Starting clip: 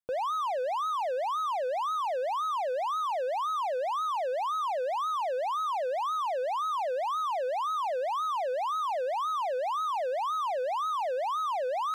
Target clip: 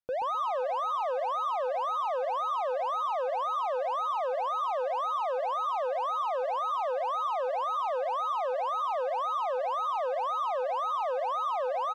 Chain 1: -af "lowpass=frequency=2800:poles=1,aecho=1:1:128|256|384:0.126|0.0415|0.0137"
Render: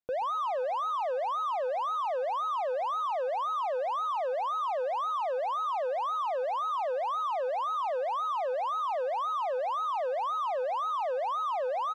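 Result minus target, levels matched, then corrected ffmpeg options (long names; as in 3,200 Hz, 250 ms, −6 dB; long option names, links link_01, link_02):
echo-to-direct −9.5 dB
-af "lowpass=frequency=2800:poles=1,aecho=1:1:128|256|384|512:0.376|0.124|0.0409|0.0135"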